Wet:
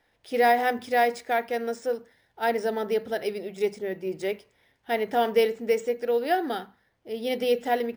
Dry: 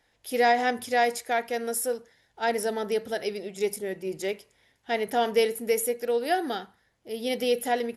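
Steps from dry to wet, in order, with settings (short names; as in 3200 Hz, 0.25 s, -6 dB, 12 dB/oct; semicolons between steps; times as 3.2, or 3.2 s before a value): careless resampling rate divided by 3×, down filtered, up hold; high shelf 4800 Hz -8.5 dB; notches 50/100/150/200/250 Hz; gain +1.5 dB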